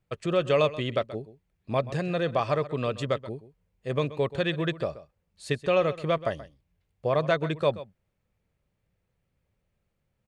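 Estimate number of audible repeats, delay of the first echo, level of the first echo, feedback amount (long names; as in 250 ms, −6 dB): 1, 130 ms, −16.0 dB, repeats not evenly spaced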